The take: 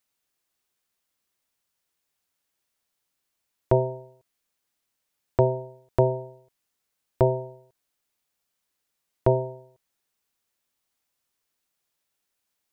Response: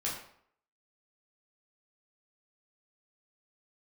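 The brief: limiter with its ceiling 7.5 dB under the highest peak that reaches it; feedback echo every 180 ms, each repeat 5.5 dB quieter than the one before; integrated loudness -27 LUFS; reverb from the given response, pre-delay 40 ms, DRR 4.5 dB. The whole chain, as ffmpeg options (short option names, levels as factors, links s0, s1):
-filter_complex "[0:a]alimiter=limit=0.211:level=0:latency=1,aecho=1:1:180|360|540|720|900|1080|1260:0.531|0.281|0.149|0.079|0.0419|0.0222|0.0118,asplit=2[s0][s1];[1:a]atrim=start_sample=2205,adelay=40[s2];[s1][s2]afir=irnorm=-1:irlink=0,volume=0.376[s3];[s0][s3]amix=inputs=2:normalize=0,volume=1.26"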